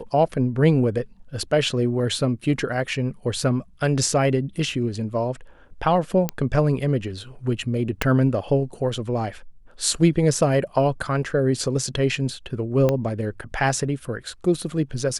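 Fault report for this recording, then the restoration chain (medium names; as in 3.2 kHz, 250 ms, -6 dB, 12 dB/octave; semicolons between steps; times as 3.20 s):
6.29 s: pop -8 dBFS
8.02 s: pop -5 dBFS
12.89 s: pop -9 dBFS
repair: de-click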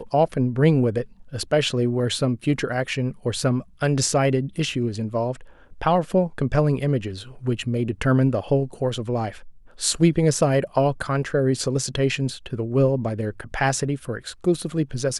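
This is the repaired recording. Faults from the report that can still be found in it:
8.02 s: pop
12.89 s: pop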